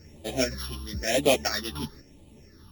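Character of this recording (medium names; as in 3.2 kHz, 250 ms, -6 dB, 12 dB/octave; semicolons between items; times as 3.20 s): a buzz of ramps at a fixed pitch in blocks of 8 samples; phasing stages 6, 1 Hz, lowest notch 540–1500 Hz; random-step tremolo; a shimmering, thickened sound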